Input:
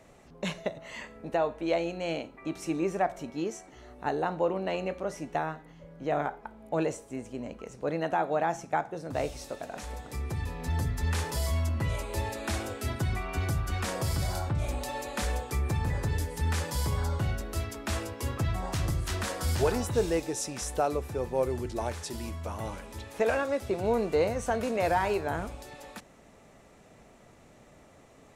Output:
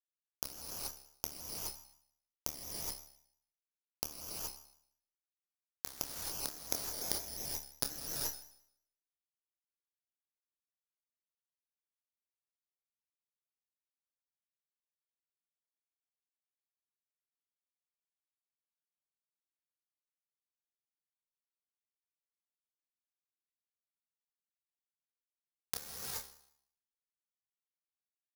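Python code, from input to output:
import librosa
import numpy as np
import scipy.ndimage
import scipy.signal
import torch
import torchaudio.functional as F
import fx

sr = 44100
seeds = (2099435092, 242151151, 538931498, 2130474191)

y = fx.low_shelf(x, sr, hz=390.0, db=7.5)
y = fx.gate_flip(y, sr, shuts_db=-31.0, range_db=-40)
y = scipy.signal.lfilter(np.full(17, 1.0 / 17), 1.0, y)
y = fx.comb_fb(y, sr, f0_hz=54.0, decay_s=0.43, harmonics='all', damping=0.0, mix_pct=30)
y = fx.quant_dither(y, sr, seeds[0], bits=6, dither='none')
y = fx.comb_fb(y, sr, f0_hz=71.0, decay_s=0.68, harmonics='all', damping=0.0, mix_pct=70)
y = fx.chorus_voices(y, sr, voices=6, hz=0.11, base_ms=27, depth_ms=2.6, mix_pct=25)
y = fx.rev_gated(y, sr, seeds[1], gate_ms=460, shape='rising', drr_db=-2.5)
y = (np.kron(y[::8], np.eye(8)[0]) * 8)[:len(y)]
y = fx.vibrato_shape(y, sr, shape='square', rate_hz=5.7, depth_cents=100.0)
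y = y * 10.0 ** (13.5 / 20.0)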